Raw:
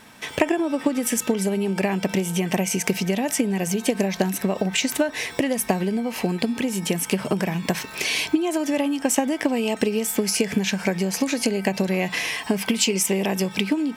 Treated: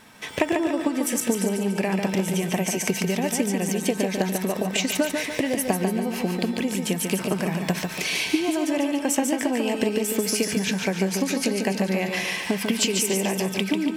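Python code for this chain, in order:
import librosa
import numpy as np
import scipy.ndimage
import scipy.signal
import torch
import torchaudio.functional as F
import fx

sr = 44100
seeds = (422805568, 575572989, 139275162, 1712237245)

y = fx.echo_feedback(x, sr, ms=144, feedback_pct=47, wet_db=-5.0)
y = F.gain(torch.from_numpy(y), -2.5).numpy()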